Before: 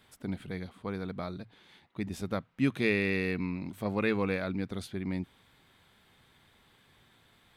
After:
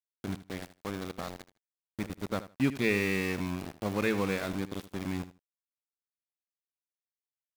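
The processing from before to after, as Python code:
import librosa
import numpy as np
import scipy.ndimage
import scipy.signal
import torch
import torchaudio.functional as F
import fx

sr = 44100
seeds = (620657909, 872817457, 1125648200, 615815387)

p1 = np.where(np.abs(x) >= 10.0 ** (-34.5 / 20.0), x, 0.0)
y = p1 + fx.echo_feedback(p1, sr, ms=78, feedback_pct=16, wet_db=-14.5, dry=0)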